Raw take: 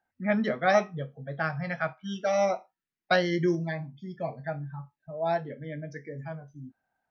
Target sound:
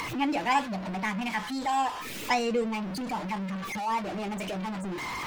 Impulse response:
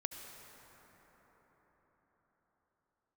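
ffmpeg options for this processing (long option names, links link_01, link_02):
-af "aeval=exprs='val(0)+0.5*0.0376*sgn(val(0))':channel_layout=same,afftdn=noise_reduction=20:noise_floor=-47,acompressor=mode=upward:threshold=-27dB:ratio=2.5,asetrate=59535,aresample=44100,volume=-3.5dB"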